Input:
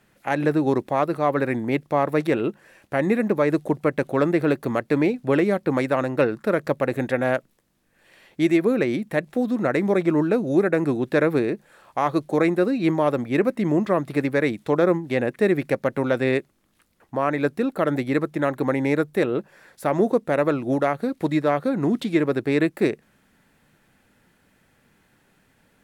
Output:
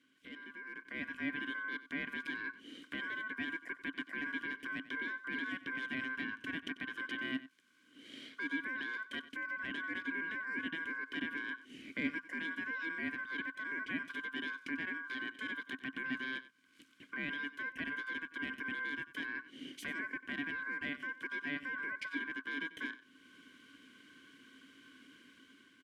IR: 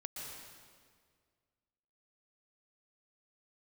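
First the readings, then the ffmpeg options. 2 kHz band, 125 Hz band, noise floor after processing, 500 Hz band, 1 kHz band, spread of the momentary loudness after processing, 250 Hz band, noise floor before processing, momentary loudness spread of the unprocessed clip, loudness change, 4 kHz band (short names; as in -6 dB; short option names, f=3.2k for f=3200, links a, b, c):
-5.0 dB, -31.0 dB, -66 dBFS, -34.0 dB, -22.0 dB, 14 LU, -22.0 dB, -64 dBFS, 5 LU, -17.5 dB, -6.0 dB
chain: -filter_complex "[0:a]equalizer=f=125:t=o:w=1:g=-7,equalizer=f=250:t=o:w=1:g=8,equalizer=f=500:t=o:w=1:g=-11,equalizer=f=1k:t=o:w=1:g=-11,equalizer=f=2k:t=o:w=1:g=-7,equalizer=f=4k:t=o:w=1:g=-3,equalizer=f=8k:t=o:w=1:g=5,acompressor=threshold=-47dB:ratio=1.5,asoftclip=type=tanh:threshold=-27.5dB,highpass=95,aeval=exprs='val(0)*sin(2*PI*1300*n/s)':c=same,alimiter=level_in=12.5dB:limit=-24dB:level=0:latency=1:release=203,volume=-12.5dB,asplit=3[a][b][c];[a]bandpass=f=270:t=q:w=8,volume=0dB[d];[b]bandpass=f=2.29k:t=q:w=8,volume=-6dB[e];[c]bandpass=f=3.01k:t=q:w=8,volume=-9dB[f];[d][e][f]amix=inputs=3:normalize=0,tiltshelf=f=800:g=3.5,aecho=1:1:93:0.15,dynaudnorm=f=350:g=5:m=12.5dB,volume=16.5dB"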